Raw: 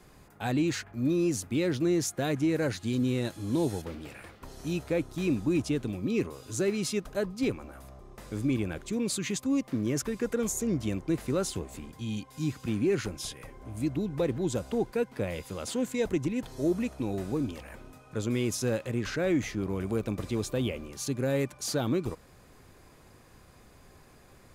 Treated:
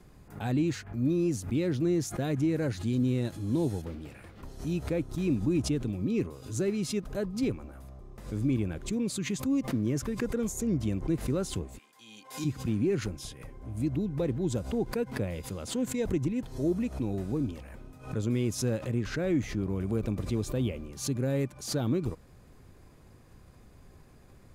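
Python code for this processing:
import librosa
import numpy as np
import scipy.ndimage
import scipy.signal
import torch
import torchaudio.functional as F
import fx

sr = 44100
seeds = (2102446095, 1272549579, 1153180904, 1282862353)

y = fx.highpass(x, sr, hz=fx.line((11.77, 1300.0), (12.44, 460.0)), slope=12, at=(11.77, 12.44), fade=0.02)
y = fx.low_shelf(y, sr, hz=340.0, db=9.5)
y = fx.pre_swell(y, sr, db_per_s=130.0)
y = y * librosa.db_to_amplitude(-6.0)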